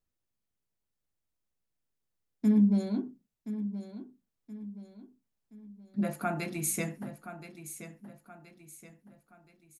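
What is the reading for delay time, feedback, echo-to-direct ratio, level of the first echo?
1.024 s, 41%, -11.0 dB, -12.0 dB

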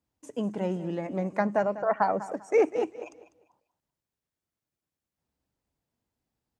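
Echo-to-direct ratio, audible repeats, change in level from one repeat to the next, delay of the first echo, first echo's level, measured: -14.0 dB, 2, -12.0 dB, 0.198 s, -14.5 dB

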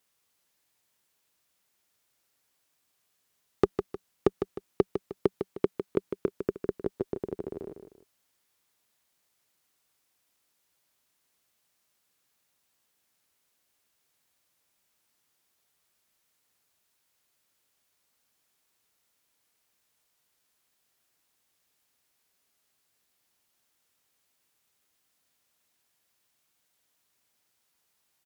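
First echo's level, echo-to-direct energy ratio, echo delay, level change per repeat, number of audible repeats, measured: -8.0 dB, -7.5 dB, 0.154 s, -8.5 dB, 2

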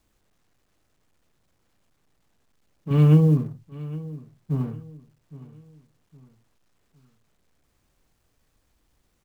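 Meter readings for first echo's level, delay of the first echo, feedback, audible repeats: -18.0 dB, 0.813 s, 39%, 3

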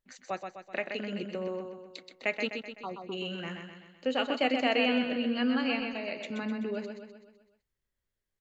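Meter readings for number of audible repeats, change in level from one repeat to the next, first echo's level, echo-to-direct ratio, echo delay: 6, -5.5 dB, -6.0 dB, -4.5 dB, 0.127 s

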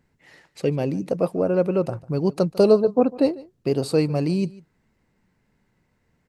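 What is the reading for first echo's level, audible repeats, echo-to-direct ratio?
-21.0 dB, 1, -21.0 dB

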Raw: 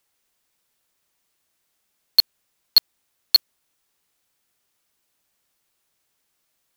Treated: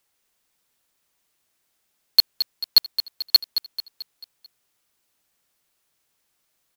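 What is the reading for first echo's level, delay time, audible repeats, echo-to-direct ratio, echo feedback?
-10.5 dB, 0.22 s, 4, -9.5 dB, 49%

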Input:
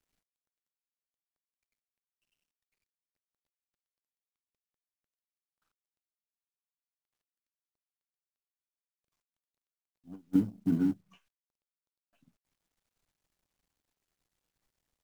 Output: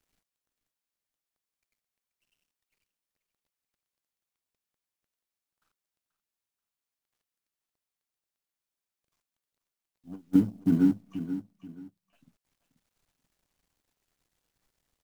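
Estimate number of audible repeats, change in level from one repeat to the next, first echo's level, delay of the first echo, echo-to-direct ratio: 2, -10.5 dB, -11.5 dB, 0.483 s, -11.0 dB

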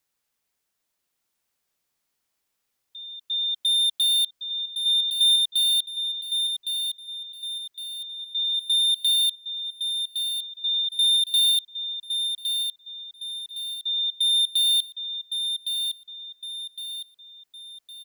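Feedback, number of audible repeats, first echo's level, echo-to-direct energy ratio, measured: 43%, 4, -6.5 dB, -5.5 dB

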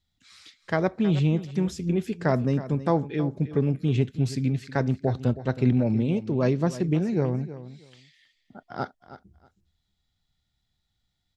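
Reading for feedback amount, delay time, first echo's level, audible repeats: 18%, 0.319 s, -14.5 dB, 2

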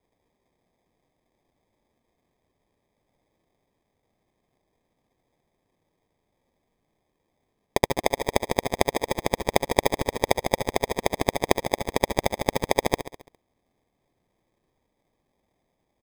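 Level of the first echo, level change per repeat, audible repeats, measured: -11.0 dB, -5.5 dB, 5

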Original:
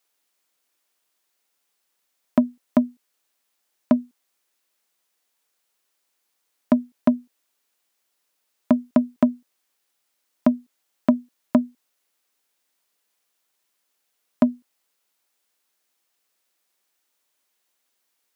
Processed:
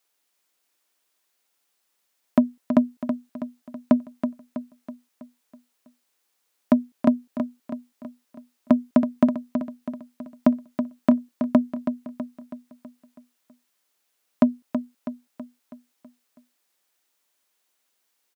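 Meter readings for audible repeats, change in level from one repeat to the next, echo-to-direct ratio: 5, -6.0 dB, -7.0 dB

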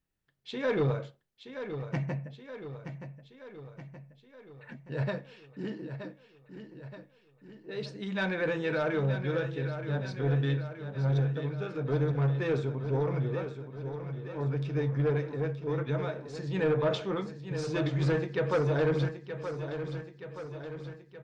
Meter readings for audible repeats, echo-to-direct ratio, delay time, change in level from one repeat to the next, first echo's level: 6, -8.0 dB, 0.924 s, -5.0 dB, -9.5 dB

